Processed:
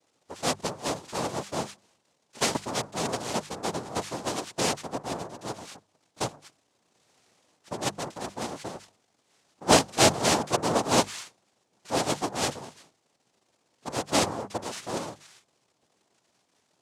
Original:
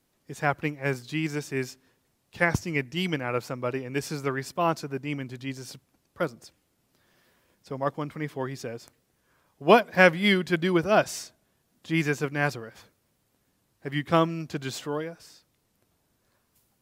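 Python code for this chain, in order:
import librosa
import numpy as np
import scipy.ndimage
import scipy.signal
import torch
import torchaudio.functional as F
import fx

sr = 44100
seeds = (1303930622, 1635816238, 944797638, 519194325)

y = fx.dmg_crackle(x, sr, seeds[0], per_s=200.0, level_db=-46.0)
y = fx.noise_vocoder(y, sr, seeds[1], bands=2)
y = fx.hum_notches(y, sr, base_hz=50, count=4)
y = F.gain(torch.from_numpy(y), -2.0).numpy()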